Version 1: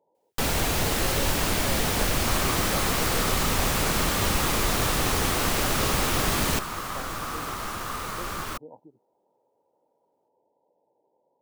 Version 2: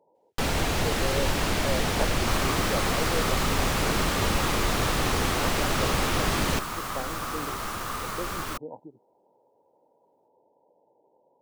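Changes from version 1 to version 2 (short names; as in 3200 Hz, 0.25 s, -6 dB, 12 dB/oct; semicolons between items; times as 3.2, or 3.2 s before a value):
speech +6.0 dB; first sound: add high shelf 8900 Hz -12 dB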